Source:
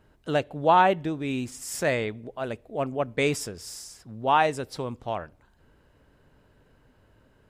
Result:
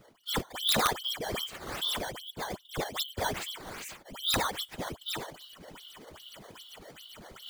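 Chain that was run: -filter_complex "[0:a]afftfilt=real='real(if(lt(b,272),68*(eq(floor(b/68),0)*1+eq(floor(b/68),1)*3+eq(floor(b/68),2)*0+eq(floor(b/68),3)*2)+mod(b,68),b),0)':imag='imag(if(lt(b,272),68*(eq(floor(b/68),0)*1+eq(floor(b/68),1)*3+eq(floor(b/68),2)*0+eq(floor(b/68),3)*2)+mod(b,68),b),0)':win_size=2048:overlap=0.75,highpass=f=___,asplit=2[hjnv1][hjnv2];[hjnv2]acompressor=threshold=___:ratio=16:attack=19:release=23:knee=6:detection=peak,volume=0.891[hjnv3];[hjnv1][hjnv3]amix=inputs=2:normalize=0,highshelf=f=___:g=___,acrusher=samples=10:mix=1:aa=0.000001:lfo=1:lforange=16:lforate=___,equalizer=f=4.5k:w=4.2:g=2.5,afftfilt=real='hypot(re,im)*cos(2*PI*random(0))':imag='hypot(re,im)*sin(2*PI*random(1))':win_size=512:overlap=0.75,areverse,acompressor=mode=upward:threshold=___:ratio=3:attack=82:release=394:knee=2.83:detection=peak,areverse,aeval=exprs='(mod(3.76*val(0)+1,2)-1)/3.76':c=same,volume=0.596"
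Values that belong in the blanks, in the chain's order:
1.3k, 0.0224, 10k, 6.5, 2.5, 0.0158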